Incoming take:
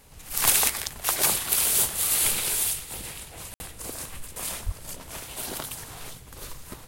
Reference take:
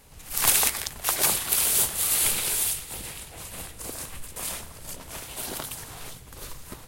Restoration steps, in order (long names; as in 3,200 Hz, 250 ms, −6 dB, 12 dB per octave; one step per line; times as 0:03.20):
0:04.65–0:04.77: high-pass filter 140 Hz 24 dB per octave
ambience match 0:03.54–0:03.60